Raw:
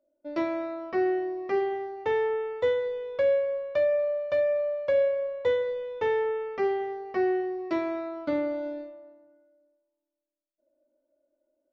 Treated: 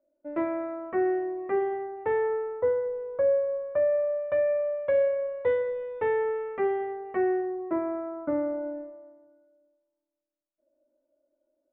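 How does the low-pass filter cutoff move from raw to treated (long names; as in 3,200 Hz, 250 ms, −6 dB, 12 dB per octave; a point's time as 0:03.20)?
low-pass filter 24 dB per octave
0:02.18 2,000 Hz
0:02.65 1,400 Hz
0:03.51 1,400 Hz
0:04.50 2,300 Hz
0:07.15 2,300 Hz
0:07.63 1,500 Hz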